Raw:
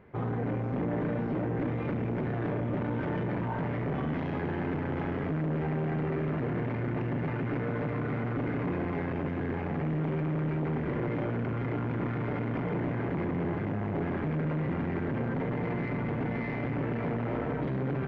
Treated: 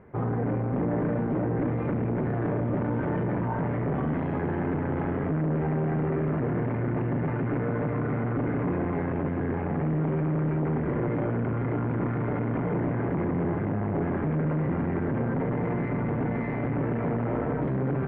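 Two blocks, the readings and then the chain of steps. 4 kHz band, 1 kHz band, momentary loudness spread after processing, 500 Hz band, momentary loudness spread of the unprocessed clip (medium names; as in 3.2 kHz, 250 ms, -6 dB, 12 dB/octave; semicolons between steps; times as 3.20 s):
no reading, +3.5 dB, 2 LU, +4.0 dB, 2 LU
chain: low-pass 1.7 kHz 12 dB/octave; trim +4 dB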